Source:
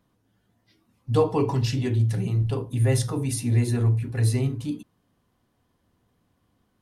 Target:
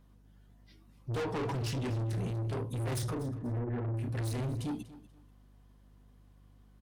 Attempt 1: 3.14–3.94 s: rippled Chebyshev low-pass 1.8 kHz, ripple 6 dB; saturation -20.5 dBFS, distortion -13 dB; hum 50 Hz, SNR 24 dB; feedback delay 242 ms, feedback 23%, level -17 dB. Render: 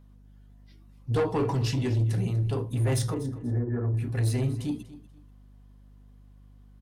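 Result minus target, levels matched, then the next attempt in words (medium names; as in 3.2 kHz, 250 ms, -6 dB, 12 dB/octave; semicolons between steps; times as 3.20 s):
saturation: distortion -8 dB
3.14–3.94 s: rippled Chebyshev low-pass 1.8 kHz, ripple 6 dB; saturation -32 dBFS, distortion -5 dB; hum 50 Hz, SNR 24 dB; feedback delay 242 ms, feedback 23%, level -17 dB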